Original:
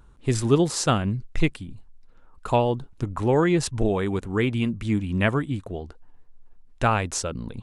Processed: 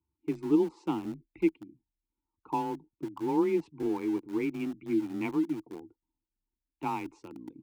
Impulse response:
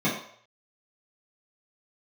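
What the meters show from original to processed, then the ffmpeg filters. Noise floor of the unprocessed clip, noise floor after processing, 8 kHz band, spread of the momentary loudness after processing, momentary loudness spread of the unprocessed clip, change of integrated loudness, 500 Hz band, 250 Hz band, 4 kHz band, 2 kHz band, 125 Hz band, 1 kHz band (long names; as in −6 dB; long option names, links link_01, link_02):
−51 dBFS, below −85 dBFS, below −25 dB, 14 LU, 12 LU, −7.5 dB, −8.5 dB, −4.0 dB, below −15 dB, −15.0 dB, −20.5 dB, −8.5 dB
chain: -filter_complex "[0:a]afftdn=noise_reduction=17:noise_floor=-41,asplit=3[link_01][link_02][link_03];[link_01]bandpass=frequency=300:width_type=q:width=8,volume=0dB[link_04];[link_02]bandpass=frequency=870:width_type=q:width=8,volume=-6dB[link_05];[link_03]bandpass=frequency=2240:width_type=q:width=8,volume=-9dB[link_06];[link_04][link_05][link_06]amix=inputs=3:normalize=0,highshelf=frequency=4200:gain=-10.5,asplit=2[link_07][link_08];[link_08]aeval=exprs='val(0)*gte(abs(val(0)),0.0119)':channel_layout=same,volume=-6dB[link_09];[link_07][link_09]amix=inputs=2:normalize=0,afreqshift=23"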